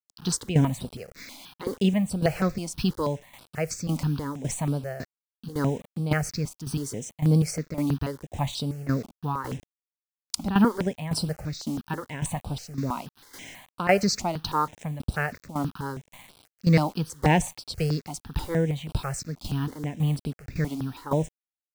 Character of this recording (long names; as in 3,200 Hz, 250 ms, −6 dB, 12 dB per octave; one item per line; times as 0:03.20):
a quantiser's noise floor 8 bits, dither none
tremolo saw down 1.8 Hz, depth 75%
notches that jump at a steady rate 6.2 Hz 460–6,600 Hz